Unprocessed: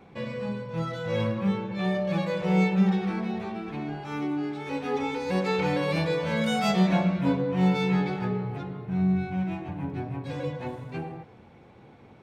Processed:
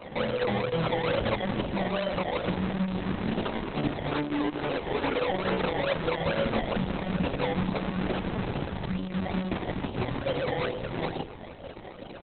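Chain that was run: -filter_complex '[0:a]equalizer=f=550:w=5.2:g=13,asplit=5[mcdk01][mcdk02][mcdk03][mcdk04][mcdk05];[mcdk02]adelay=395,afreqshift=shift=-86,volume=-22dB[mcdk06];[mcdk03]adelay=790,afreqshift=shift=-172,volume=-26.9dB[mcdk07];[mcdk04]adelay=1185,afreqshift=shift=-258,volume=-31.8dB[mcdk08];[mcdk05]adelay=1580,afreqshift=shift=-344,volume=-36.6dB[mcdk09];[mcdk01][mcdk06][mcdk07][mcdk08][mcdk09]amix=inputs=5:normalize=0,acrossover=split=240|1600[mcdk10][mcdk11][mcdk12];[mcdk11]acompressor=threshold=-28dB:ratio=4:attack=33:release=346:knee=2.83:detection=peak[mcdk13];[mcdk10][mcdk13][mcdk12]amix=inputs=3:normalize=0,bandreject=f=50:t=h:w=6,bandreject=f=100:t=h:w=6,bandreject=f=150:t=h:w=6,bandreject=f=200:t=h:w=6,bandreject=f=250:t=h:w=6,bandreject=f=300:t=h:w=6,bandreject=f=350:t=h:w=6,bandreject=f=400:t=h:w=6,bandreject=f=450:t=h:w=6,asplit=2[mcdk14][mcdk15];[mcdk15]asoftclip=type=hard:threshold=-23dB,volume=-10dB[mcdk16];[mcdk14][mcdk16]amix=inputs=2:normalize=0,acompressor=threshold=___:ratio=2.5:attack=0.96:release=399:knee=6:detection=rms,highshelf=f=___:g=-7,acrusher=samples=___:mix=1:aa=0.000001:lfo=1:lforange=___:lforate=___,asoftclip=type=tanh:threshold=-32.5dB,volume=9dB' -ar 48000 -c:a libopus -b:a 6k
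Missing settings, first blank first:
-24dB, 5.8k, 23, 23, 2.3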